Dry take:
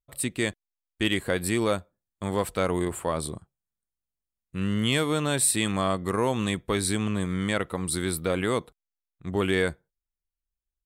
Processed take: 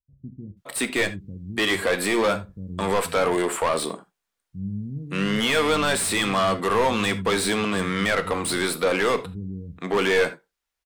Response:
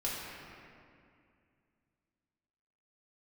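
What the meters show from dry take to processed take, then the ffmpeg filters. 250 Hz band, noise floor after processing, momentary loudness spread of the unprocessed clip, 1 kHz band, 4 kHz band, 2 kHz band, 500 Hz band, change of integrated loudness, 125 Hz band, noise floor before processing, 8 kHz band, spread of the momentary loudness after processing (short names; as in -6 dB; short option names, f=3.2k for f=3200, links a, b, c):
+1.5 dB, -83 dBFS, 8 LU, +7.0 dB, +5.5 dB, +7.5 dB, +5.0 dB, +3.5 dB, -1.5 dB, under -85 dBFS, 0.0 dB, 13 LU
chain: -filter_complex "[0:a]acrossover=split=160[a][b];[b]adelay=570[c];[a][c]amix=inputs=2:normalize=0,asplit=2[d][e];[e]highpass=f=720:p=1,volume=25dB,asoftclip=type=tanh:threshold=-10dB[f];[d][f]amix=inputs=2:normalize=0,lowpass=f=3.7k:p=1,volume=-6dB,asplit=2[g][h];[1:a]atrim=start_sample=2205,atrim=end_sample=3969[i];[h][i]afir=irnorm=-1:irlink=0,volume=-8dB[j];[g][j]amix=inputs=2:normalize=0,volume=-5dB"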